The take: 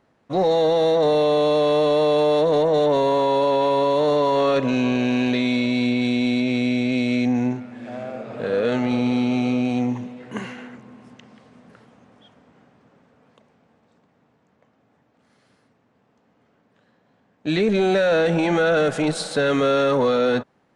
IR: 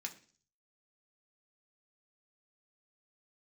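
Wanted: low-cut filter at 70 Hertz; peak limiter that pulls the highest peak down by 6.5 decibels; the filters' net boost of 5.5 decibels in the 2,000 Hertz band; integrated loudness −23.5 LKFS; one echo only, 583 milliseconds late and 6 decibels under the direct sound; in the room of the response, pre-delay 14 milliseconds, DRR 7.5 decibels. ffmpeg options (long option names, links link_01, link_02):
-filter_complex "[0:a]highpass=70,equalizer=frequency=2000:width_type=o:gain=7.5,alimiter=limit=-14.5dB:level=0:latency=1,aecho=1:1:583:0.501,asplit=2[link_01][link_02];[1:a]atrim=start_sample=2205,adelay=14[link_03];[link_02][link_03]afir=irnorm=-1:irlink=0,volume=-6dB[link_04];[link_01][link_04]amix=inputs=2:normalize=0,volume=-2dB"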